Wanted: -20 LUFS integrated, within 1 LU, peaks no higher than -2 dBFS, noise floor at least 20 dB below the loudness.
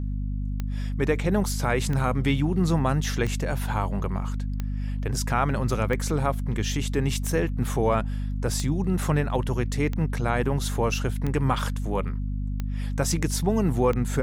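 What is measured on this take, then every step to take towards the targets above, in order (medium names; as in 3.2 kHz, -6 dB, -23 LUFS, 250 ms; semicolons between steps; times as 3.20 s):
clicks found 11; hum 50 Hz; highest harmonic 250 Hz; hum level -26 dBFS; loudness -26.5 LUFS; peak level -9.5 dBFS; loudness target -20.0 LUFS
-> de-click; de-hum 50 Hz, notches 5; trim +6.5 dB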